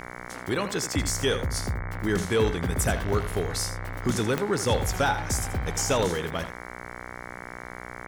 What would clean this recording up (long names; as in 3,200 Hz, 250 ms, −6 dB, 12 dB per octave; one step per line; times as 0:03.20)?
click removal
hum removal 60.9 Hz, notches 37
echo removal 81 ms −11.5 dB